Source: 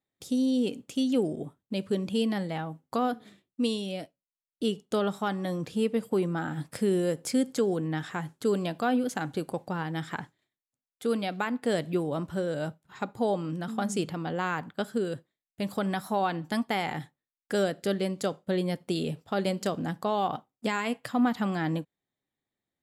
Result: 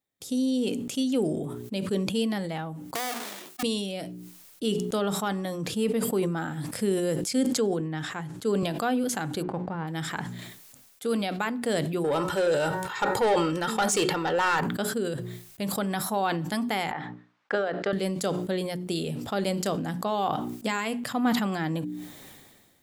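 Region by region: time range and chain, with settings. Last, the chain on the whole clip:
0:02.95–0:03.63: each half-wave held at its own peak + high-pass filter 510 Hz + downward compressor 2 to 1, threshold −31 dBFS
0:07.21–0:08.63: high-shelf EQ 9,800 Hz −9.5 dB + multiband upward and downward expander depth 40%
0:09.41–0:09.87: spectral envelope flattened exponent 0.6 + low-pass filter 1,200 Hz
0:12.04–0:14.61: comb filter 2.2 ms, depth 52% + hum removal 186 Hz, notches 11 + mid-hump overdrive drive 18 dB, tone 4,800 Hz, clips at −15.5 dBFS
0:16.91–0:17.93: transient designer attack +12 dB, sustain −5 dB + resonant band-pass 1,100 Hz, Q 1.1 + high-frequency loss of the air 140 metres
whole clip: high-shelf EQ 5,700 Hz +6.5 dB; mains-hum notches 60/120/180/240/300/360/420 Hz; level that may fall only so fast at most 36 dB per second

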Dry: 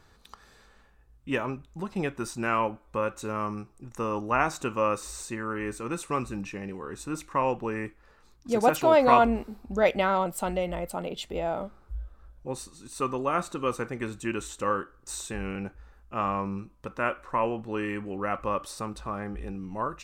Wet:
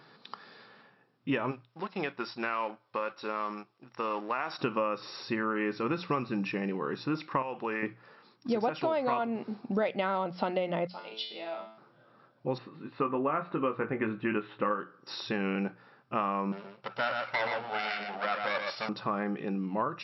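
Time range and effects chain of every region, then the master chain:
0:01.51–0:04.59: mu-law and A-law mismatch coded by A + high-pass filter 660 Hz 6 dB per octave + downward compressor 3 to 1, threshold −32 dBFS
0:07.42–0:07.83: low-shelf EQ 480 Hz −11 dB + downward compressor 2 to 1, threshold −33 dBFS
0:10.87–0:11.78: spectral tilt +4.5 dB per octave + tuned comb filter 110 Hz, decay 0.63 s, mix 90%
0:12.58–0:14.80: low-pass filter 2,500 Hz 24 dB per octave + double-tracking delay 19 ms −6.5 dB
0:16.52–0:18.89: lower of the sound and its delayed copy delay 1.4 ms + high-pass filter 660 Hz 6 dB per octave + single-tap delay 122 ms −5.5 dB
whole clip: brick-wall band-pass 110–5,600 Hz; mains-hum notches 60/120/180 Hz; downward compressor 12 to 1, threshold −31 dBFS; level +5 dB

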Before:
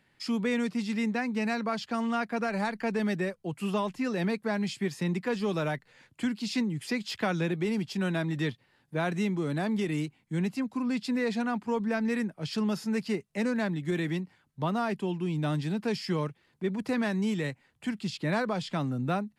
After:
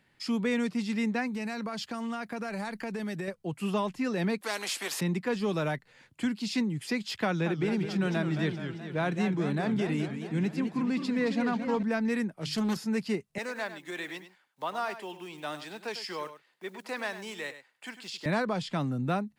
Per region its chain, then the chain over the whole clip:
0:01.27–0:03.28: high-shelf EQ 7,100 Hz +9 dB + downward compressor, threshold −31 dBFS
0:04.41–0:05.01: high-pass filter 410 Hz 24 dB per octave + every bin compressed towards the loudest bin 2 to 1
0:07.25–0:11.83: high-shelf EQ 8,200 Hz −9 dB + feedback echo with a swinging delay time 213 ms, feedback 63%, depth 205 cents, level −8.5 dB
0:12.37–0:12.77: high-shelf EQ 5,600 Hz +8.5 dB + mains-hum notches 50/100/150/200/250/300 Hz + highs frequency-modulated by the lows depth 0.29 ms
0:13.38–0:18.26: one scale factor per block 7 bits + high-pass filter 600 Hz + single-tap delay 100 ms −12 dB
whole clip: no processing

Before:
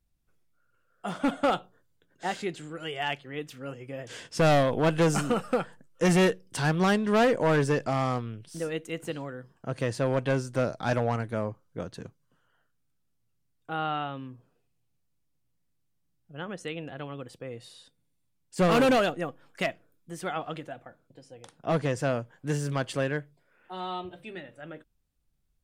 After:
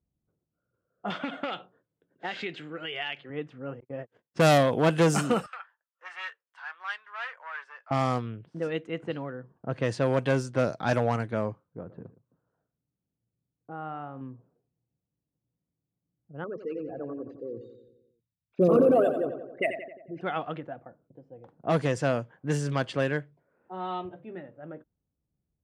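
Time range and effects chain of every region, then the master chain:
0:01.10–0:03.30: meter weighting curve D + downward compressor 12 to 1, threshold −28 dBFS
0:03.80–0:04.58: noise gate −40 dBFS, range −43 dB + high-shelf EQ 5,800 Hz +9 dB
0:05.46–0:07.91: high-pass filter 1,200 Hz 24 dB per octave + flanger 1.4 Hz, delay 4.9 ms, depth 1.2 ms, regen −69%
0:11.64–0:14.21: downward compressor 1.5 to 1, threshold −43 dBFS + high-frequency loss of the air 300 metres + single-tap delay 115 ms −16 dB
0:16.44–0:20.21: spectral envelope exaggerated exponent 3 + repeating echo 89 ms, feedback 60%, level −9.5 dB + linearly interpolated sample-rate reduction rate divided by 4×
whole clip: low-pass that shuts in the quiet parts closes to 600 Hz, open at −23 dBFS; high-pass filter 86 Hz; level +1.5 dB

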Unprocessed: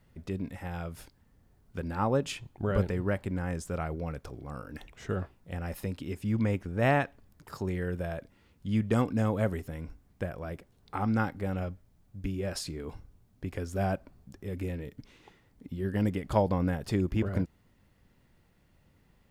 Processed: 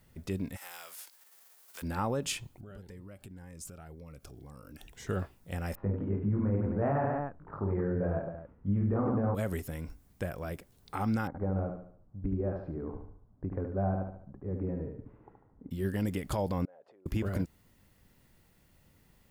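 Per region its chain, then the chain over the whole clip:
0:00.56–0:01.81: spectral envelope flattened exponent 0.6 + high-pass filter 730 Hz + downward compressor 1.5 to 1, threshold −58 dBFS
0:02.54–0:05.07: downward compressor, threshold −45 dBFS + phaser whose notches keep moving one way rising 1.9 Hz
0:05.75–0:09.35: low-pass filter 1,300 Hz 24 dB per octave + reverse bouncing-ball delay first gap 20 ms, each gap 1.5×, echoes 5, each echo −2 dB
0:11.27–0:15.71: low-pass filter 1,200 Hz 24 dB per octave + repeating echo 73 ms, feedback 42%, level −5.5 dB
0:16.65–0:17.06: downward compressor 10 to 1, threshold −37 dBFS + four-pole ladder band-pass 650 Hz, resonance 55%
whole clip: high-shelf EQ 5,800 Hz +11.5 dB; brickwall limiter −22 dBFS

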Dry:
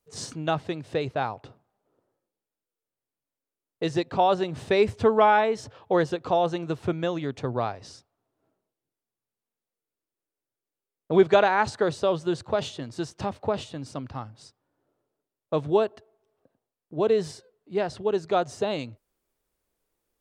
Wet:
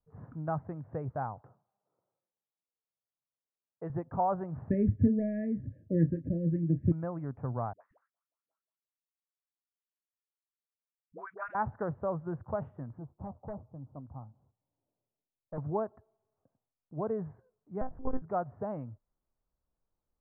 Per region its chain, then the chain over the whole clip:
0:01.41–0:03.90: high-pass filter 180 Hz + parametric band 260 Hz −10 dB 0.4 octaves
0:04.70–0:06.92: linear-phase brick-wall band-stop 640–1,600 Hz + low shelf with overshoot 370 Hz +7 dB, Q 3 + double-tracking delay 30 ms −11.5 dB
0:07.73–0:11.55: parametric band 760 Hz −14.5 dB 0.94 octaves + auto-filter high-pass saw up 5.6 Hz 600–4,600 Hz + all-pass dispersion highs, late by 78 ms, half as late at 430 Hz
0:12.98–0:15.58: low-pass filter 1,000 Hz 24 dB per octave + flanger 1.2 Hz, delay 1.2 ms, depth 4.4 ms, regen −74% + hard clipping −26 dBFS
0:17.81–0:18.22: notch filter 1,400 Hz, Q 5.3 + one-pitch LPC vocoder at 8 kHz 260 Hz
whole clip: Bessel low-pass filter 800 Hz, order 8; parametric band 390 Hz −13 dB 1.4 octaves

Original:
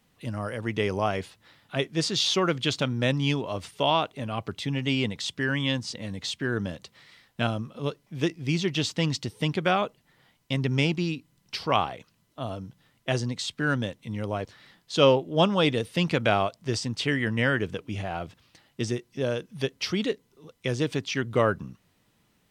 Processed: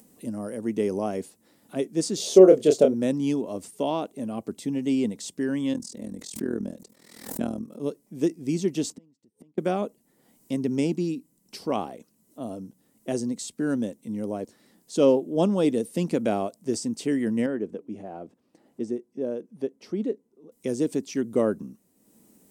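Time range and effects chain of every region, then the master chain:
0:02.17–0:02.94: flat-topped bell 520 Hz +13.5 dB 1.1 octaves + double-tracking delay 27 ms −5.5 dB
0:05.73–0:07.80: parametric band 2,900 Hz −4.5 dB 0.32 octaves + amplitude modulation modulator 41 Hz, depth 80% + background raised ahead of every attack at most 63 dB per second
0:08.90–0:09.58: high-shelf EQ 2,200 Hz −11.5 dB + gate with flip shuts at −31 dBFS, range −33 dB
0:17.46–0:20.52: low-pass filter 1,000 Hz 6 dB per octave + low-shelf EQ 170 Hz −11 dB
whole clip: drawn EQ curve 130 Hz 0 dB, 220 Hz +13 dB, 1,300 Hz −12 dB, 3,400 Hz −12 dB, 8,100 Hz +12 dB; upward compression, threshold −41 dBFS; bass and treble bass −12 dB, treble −6 dB

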